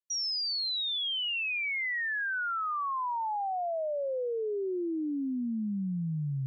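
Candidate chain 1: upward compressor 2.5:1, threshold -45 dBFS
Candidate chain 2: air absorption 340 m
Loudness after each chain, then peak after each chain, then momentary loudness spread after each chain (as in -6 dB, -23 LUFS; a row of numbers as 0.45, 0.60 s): -31.0, -34.0 LUFS; -29.0, -29.0 dBFS; 4, 5 LU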